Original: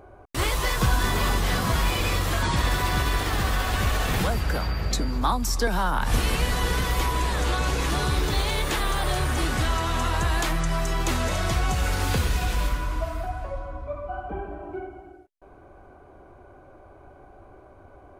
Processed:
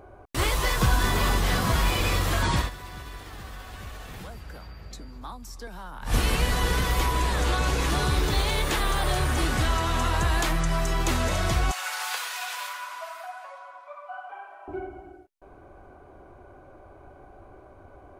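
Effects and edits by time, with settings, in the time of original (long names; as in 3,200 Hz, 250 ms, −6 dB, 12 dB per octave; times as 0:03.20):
0:02.57–0:06.16: duck −16 dB, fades 0.14 s
0:11.71–0:14.68: high-pass filter 810 Hz 24 dB per octave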